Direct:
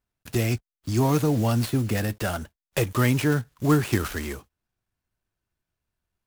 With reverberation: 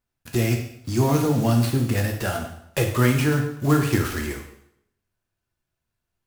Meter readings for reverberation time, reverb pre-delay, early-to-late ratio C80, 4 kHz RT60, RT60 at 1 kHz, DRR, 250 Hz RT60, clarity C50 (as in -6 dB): 0.70 s, 5 ms, 9.5 dB, 0.70 s, 0.75 s, 2.0 dB, 0.75 s, 6.5 dB